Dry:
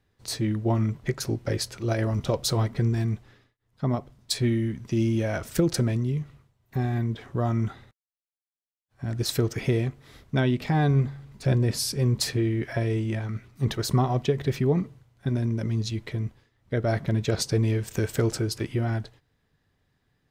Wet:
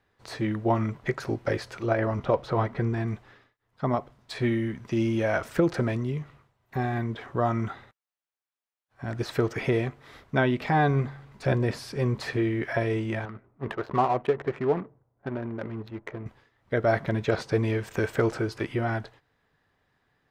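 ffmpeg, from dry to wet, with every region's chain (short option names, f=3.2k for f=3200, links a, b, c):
-filter_complex "[0:a]asettb=1/sr,asplit=3[a][b][c];[a]atrim=end=1.864[d];[b]atrim=start=1.86:end=3.07,asetpts=PTS-STARTPTS,afade=t=in:d=0.004:c=qsin,afade=t=out:st=1.206:d=0.004:c=qsin,highshelf=f=5k:g=-9,acrossover=split=2700[e][f];[f]acompressor=threshold=-52dB:ratio=4:attack=1:release=60[g];[e][g]amix=inputs=2:normalize=0[h];[c]atrim=start=3.066[i];[d][h]acrossfade=d=0.004:c1=hsin:c2=qsin[j];[j][i]acrossfade=d=0.004:c1=qsin:c2=hsin,asettb=1/sr,asplit=3[k][l][m];[k]atrim=end=13.254[n];[l]atrim=start=13.25:end=16.26,asetpts=PTS-STARTPTS,afade=t=in:d=0.004:c=qsin,afade=t=out:st=3.006:d=0.004:c=qsin,bass=f=250:g=-8,treble=f=4k:g=-11,adynamicsmooth=sensitivity=6:basefreq=540[o];[m]atrim=start=16.256[p];[n][o]acrossfade=d=0.004:c1=hsin:c2=qsin[q];[q][p]acrossfade=d=0.004:c1=qsin:c2=hsin,acrossover=split=2800[r][s];[s]acompressor=threshold=-41dB:ratio=4:attack=1:release=60[t];[r][t]amix=inputs=2:normalize=0,equalizer=f=1.1k:w=0.33:g=12.5,volume=-6dB"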